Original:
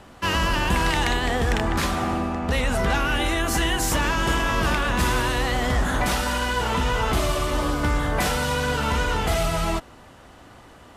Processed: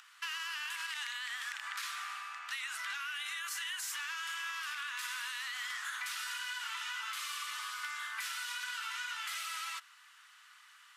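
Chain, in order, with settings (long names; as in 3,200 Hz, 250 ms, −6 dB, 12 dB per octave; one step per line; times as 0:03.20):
upward compression, threshold −45 dBFS
Butterworth high-pass 1,200 Hz 36 dB per octave
brickwall limiter −19 dBFS, peak gain reduction 8.5 dB
downward compressor, threshold −31 dBFS, peak gain reduction 6.5 dB
low-pass filter 1,900 Hz 6 dB per octave
spectral tilt +4.5 dB per octave
highs frequency-modulated by the lows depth 0.44 ms
level −6.5 dB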